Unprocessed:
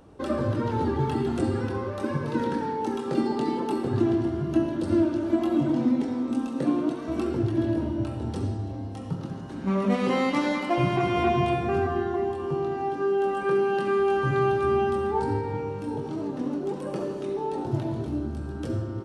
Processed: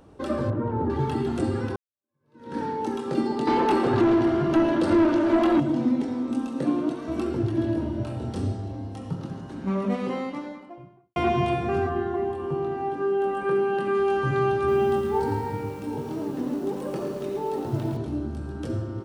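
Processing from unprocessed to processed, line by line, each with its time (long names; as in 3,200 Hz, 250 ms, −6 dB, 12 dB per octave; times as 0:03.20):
0:00.50–0:00.90: low-pass filter 1,200 Hz
0:01.76–0:02.58: fade in exponential
0:03.47–0:05.60: mid-hump overdrive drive 21 dB, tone 2,400 Hz, clips at −11.5 dBFS
0:07.90–0:08.68: double-tracking delay 32 ms −5.5 dB
0:09.33–0:11.16: fade out and dull
0:11.89–0:13.95: parametric band 5,500 Hz −7.5 dB 1.2 octaves
0:14.57–0:17.97: feedback echo at a low word length 111 ms, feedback 55%, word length 8 bits, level −7 dB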